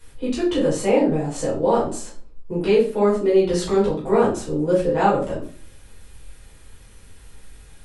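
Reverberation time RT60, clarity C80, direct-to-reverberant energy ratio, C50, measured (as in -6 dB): 0.45 s, 11.5 dB, -9.0 dB, 5.5 dB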